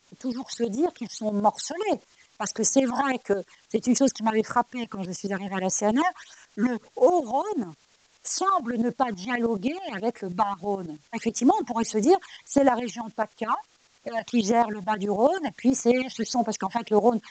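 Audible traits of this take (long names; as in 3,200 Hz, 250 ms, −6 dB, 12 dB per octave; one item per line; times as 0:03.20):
phaser sweep stages 12, 1.6 Hz, lowest notch 410–4,100 Hz
a quantiser's noise floor 10 bits, dither triangular
tremolo saw up 9.3 Hz, depth 70%
mu-law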